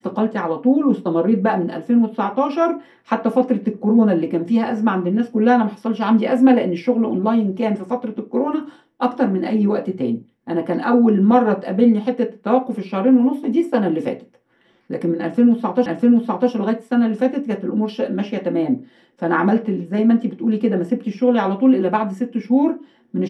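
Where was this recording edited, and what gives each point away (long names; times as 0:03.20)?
0:15.86: the same again, the last 0.65 s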